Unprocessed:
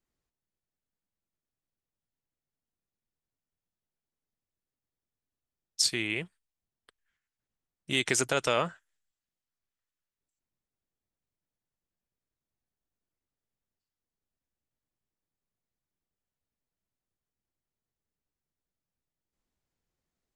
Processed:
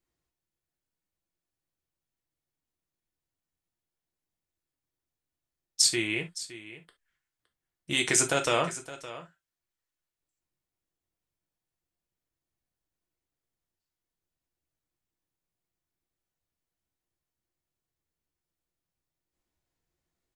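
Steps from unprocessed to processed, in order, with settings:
dynamic equaliser 8,200 Hz, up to +6 dB, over −43 dBFS, Q 1.6
single-tap delay 565 ms −15.5 dB
reverb whose tail is shaped and stops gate 90 ms falling, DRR 3.5 dB

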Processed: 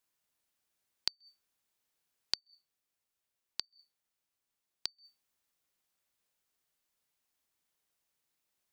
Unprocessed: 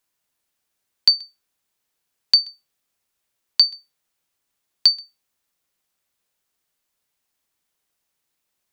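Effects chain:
0:02.39–0:04.88: flanger 1.5 Hz, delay 8.7 ms, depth 2.1 ms, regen −69%
gate with flip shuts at −18 dBFS, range −40 dB
level −6 dB

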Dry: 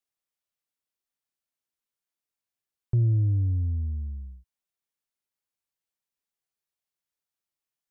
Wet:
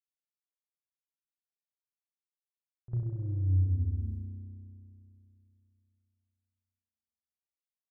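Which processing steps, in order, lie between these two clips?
reverb reduction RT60 0.76 s
downward expander −43 dBFS
reversed playback
downward compressor, threshold −37 dBFS, peak gain reduction 15.5 dB
reversed playback
echo ahead of the sound 51 ms −14.5 dB
spring reverb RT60 2.8 s, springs 32 ms, chirp 65 ms, DRR −2.5 dB
level +4.5 dB

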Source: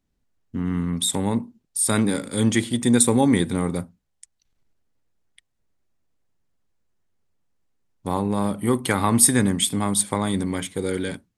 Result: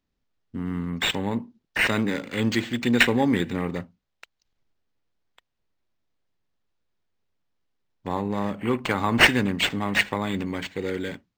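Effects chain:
bass and treble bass −3 dB, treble +4 dB
linearly interpolated sample-rate reduction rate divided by 4×
level −2.5 dB

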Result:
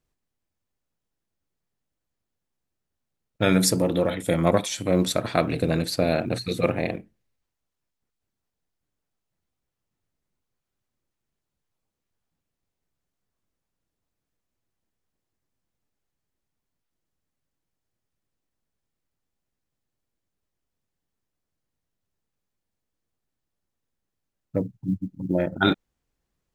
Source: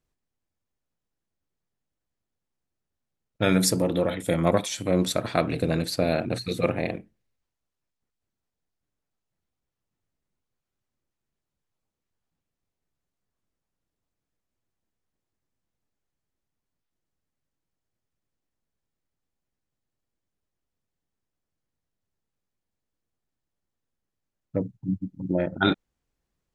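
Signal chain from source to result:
floating-point word with a short mantissa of 6 bits
level +1.5 dB

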